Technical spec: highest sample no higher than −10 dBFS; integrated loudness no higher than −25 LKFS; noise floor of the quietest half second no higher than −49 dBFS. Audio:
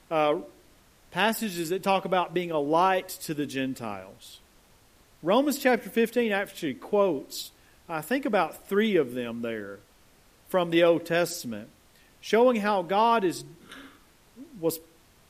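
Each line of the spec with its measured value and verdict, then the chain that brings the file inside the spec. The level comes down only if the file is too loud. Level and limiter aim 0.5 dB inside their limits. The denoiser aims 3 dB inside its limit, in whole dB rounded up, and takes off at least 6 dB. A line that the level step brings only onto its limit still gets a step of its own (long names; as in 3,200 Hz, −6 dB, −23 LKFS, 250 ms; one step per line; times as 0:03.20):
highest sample −8.0 dBFS: out of spec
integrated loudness −26.5 LKFS: in spec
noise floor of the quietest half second −59 dBFS: in spec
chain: brickwall limiter −10.5 dBFS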